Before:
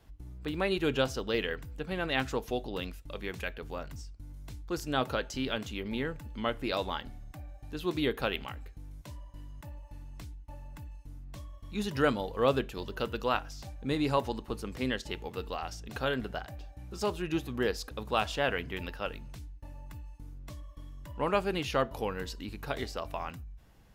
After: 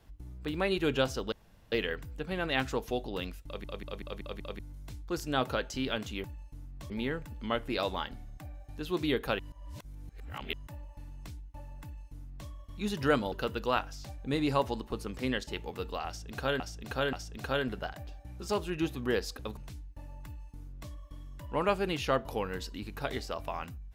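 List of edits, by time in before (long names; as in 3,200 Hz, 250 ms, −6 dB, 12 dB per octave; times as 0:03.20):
0:01.32: splice in room tone 0.40 s
0:03.05: stutter in place 0.19 s, 6 plays
0:08.33–0:09.47: reverse
0:10.77–0:11.43: duplicate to 0:05.84
0:12.26–0:12.90: remove
0:15.65–0:16.18: repeat, 3 plays
0:18.09–0:19.23: remove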